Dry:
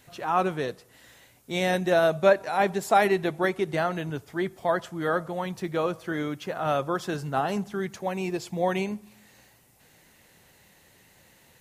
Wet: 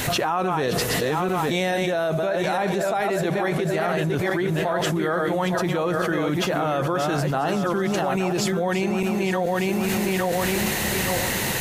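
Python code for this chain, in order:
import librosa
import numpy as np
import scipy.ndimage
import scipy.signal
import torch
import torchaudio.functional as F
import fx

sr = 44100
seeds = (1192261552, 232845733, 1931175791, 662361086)

y = fx.reverse_delay_fb(x, sr, ms=430, feedback_pct=44, wet_db=-5.5)
y = fx.env_flatten(y, sr, amount_pct=100)
y = F.gain(torch.from_numpy(y), -8.5).numpy()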